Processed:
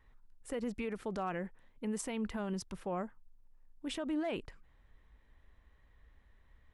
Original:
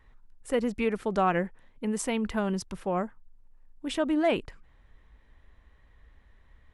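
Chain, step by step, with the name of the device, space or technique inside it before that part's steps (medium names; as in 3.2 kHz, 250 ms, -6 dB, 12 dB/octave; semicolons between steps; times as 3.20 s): clipper into limiter (hard clipper -16 dBFS, distortion -39 dB; peak limiter -23 dBFS, peak gain reduction 7 dB); trim -6 dB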